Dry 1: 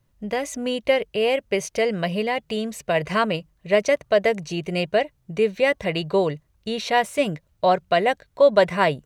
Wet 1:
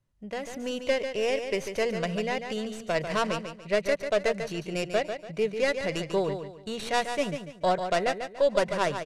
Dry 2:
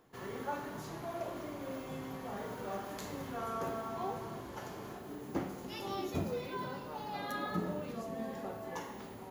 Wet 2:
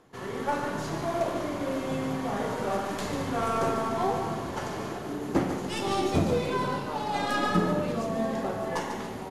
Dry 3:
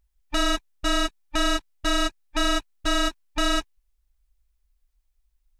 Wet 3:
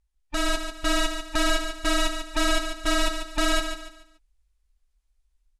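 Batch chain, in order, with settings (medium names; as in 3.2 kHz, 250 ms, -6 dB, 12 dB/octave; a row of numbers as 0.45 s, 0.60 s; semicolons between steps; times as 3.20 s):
tracing distortion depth 0.18 ms; low-pass 11 kHz 24 dB/octave; level rider gain up to 4 dB; on a send: feedback delay 144 ms, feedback 33%, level -8 dB; on the sum: peak normalisation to -12 dBFS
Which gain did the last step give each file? -10.0 dB, +6.5 dB, -4.0 dB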